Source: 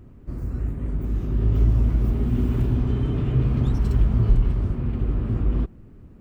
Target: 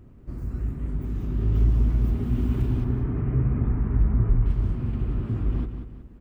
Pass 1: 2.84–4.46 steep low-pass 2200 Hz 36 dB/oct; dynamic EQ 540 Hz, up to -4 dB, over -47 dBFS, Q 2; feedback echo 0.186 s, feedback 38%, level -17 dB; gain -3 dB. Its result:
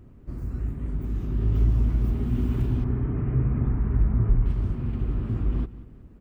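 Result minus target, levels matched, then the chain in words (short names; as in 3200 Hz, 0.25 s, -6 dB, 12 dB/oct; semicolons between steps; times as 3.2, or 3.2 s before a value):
echo-to-direct -8.5 dB
2.84–4.46 steep low-pass 2200 Hz 36 dB/oct; dynamic EQ 540 Hz, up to -4 dB, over -47 dBFS, Q 2; feedback echo 0.186 s, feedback 38%, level -8.5 dB; gain -3 dB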